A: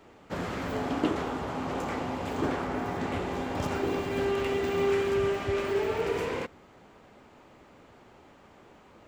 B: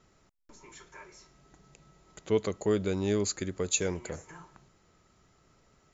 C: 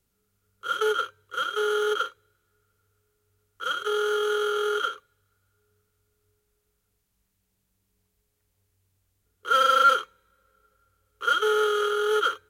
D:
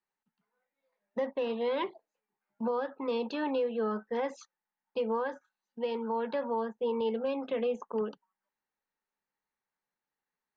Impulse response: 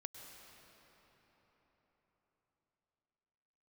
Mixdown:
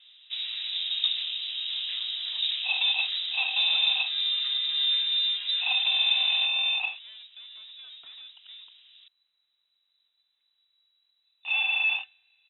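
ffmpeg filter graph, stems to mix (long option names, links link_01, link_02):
-filter_complex "[0:a]lowpass=1300,volume=0.5dB[link_01];[1:a]volume=-16.5dB[link_02];[2:a]lowpass=frequency=1700:poles=1,alimiter=limit=-20dB:level=0:latency=1:release=131,adelay=2000,volume=1.5dB[link_03];[3:a]acompressor=threshold=-33dB:ratio=6,asoftclip=type=tanh:threshold=-39.5dB,adelay=550,volume=-4.5dB[link_04];[link_01][link_02][link_03][link_04]amix=inputs=4:normalize=0,lowpass=frequency=3400:width_type=q:width=0.5098,lowpass=frequency=3400:width_type=q:width=0.6013,lowpass=frequency=3400:width_type=q:width=0.9,lowpass=frequency=3400:width_type=q:width=2.563,afreqshift=-4000"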